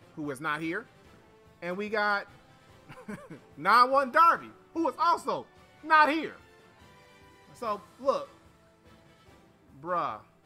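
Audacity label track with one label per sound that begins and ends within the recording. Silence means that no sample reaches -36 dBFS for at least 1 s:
7.620000	8.240000	sound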